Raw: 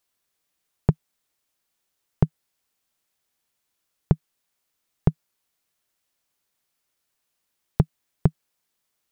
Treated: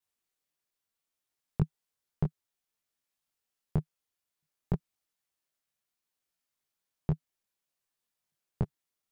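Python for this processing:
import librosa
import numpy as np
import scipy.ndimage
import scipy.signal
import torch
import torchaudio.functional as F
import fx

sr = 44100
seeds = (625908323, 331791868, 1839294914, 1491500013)

y = fx.block_reorder(x, sr, ms=177.0, group=5)
y = fx.detune_double(y, sr, cents=21)
y = y * 10.0 ** (-6.0 / 20.0)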